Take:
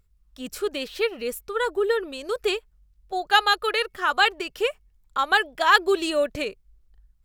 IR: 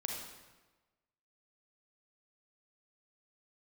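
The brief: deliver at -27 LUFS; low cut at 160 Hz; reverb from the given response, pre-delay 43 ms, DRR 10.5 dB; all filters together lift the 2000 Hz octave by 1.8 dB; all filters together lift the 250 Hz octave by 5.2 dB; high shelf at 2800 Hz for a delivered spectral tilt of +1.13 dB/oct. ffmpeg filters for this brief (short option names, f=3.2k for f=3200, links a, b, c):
-filter_complex "[0:a]highpass=160,equalizer=f=250:t=o:g=8.5,equalizer=f=2k:t=o:g=5,highshelf=f=2.8k:g=-7.5,asplit=2[a][b];[1:a]atrim=start_sample=2205,adelay=43[c];[b][c]afir=irnorm=-1:irlink=0,volume=-12dB[d];[a][d]amix=inputs=2:normalize=0,volume=-5dB"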